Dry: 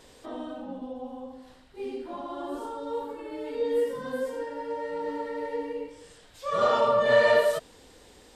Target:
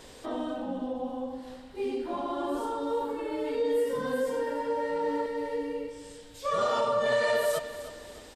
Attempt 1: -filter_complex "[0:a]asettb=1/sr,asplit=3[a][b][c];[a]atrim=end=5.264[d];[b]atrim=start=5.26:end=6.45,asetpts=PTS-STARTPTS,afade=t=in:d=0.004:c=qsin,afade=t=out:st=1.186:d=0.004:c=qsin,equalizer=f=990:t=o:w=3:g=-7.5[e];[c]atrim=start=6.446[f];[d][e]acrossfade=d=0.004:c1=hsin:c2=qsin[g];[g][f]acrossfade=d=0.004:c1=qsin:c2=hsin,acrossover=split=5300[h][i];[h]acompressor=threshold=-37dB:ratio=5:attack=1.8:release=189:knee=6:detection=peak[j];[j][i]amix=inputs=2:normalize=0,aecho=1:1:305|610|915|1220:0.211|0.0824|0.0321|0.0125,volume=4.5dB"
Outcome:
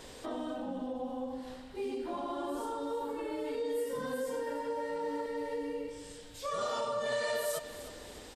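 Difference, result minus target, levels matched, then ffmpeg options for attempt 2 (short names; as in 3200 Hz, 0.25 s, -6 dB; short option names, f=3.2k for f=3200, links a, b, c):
compressor: peak gain reduction +7.5 dB
-filter_complex "[0:a]asettb=1/sr,asplit=3[a][b][c];[a]atrim=end=5.264[d];[b]atrim=start=5.26:end=6.45,asetpts=PTS-STARTPTS,afade=t=in:d=0.004:c=qsin,afade=t=out:st=1.186:d=0.004:c=qsin,equalizer=f=990:t=o:w=3:g=-7.5[e];[c]atrim=start=6.446[f];[d][e]acrossfade=d=0.004:c1=hsin:c2=qsin[g];[g][f]acrossfade=d=0.004:c1=qsin:c2=hsin,acrossover=split=5300[h][i];[h]acompressor=threshold=-27.5dB:ratio=5:attack=1.8:release=189:knee=6:detection=peak[j];[j][i]amix=inputs=2:normalize=0,aecho=1:1:305|610|915|1220:0.211|0.0824|0.0321|0.0125,volume=4.5dB"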